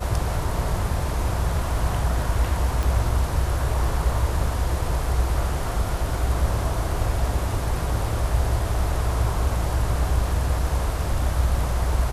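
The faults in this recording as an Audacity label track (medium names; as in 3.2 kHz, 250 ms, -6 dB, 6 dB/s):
2.830000	2.830000	pop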